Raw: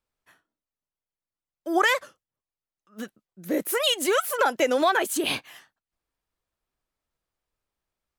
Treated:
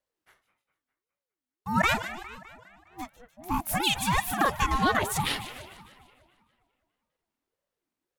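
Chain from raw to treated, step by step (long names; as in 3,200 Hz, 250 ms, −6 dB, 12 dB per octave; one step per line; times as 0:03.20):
echo with a time of its own for lows and highs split 2,500 Hz, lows 204 ms, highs 150 ms, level −13 dB
ring modulator whose carrier an LFO sweeps 410 Hz, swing 40%, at 1.7 Hz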